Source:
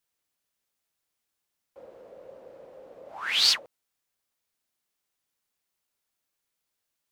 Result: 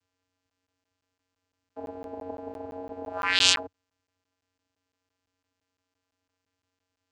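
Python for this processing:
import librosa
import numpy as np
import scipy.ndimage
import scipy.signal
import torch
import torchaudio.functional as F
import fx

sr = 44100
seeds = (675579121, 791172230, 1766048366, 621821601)

y = fx.vocoder(x, sr, bands=8, carrier='square', carrier_hz=91.8)
y = fx.buffer_crackle(y, sr, first_s=0.5, period_s=0.17, block=512, kind='zero')
y = y * librosa.db_to_amplitude(2.5)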